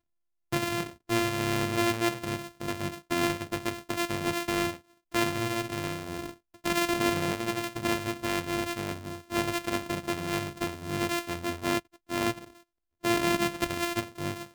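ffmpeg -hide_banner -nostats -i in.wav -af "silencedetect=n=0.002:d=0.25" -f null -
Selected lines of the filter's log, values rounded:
silence_start: 0.00
silence_end: 0.52 | silence_duration: 0.52
silence_start: 12.63
silence_end: 13.03 | silence_duration: 0.40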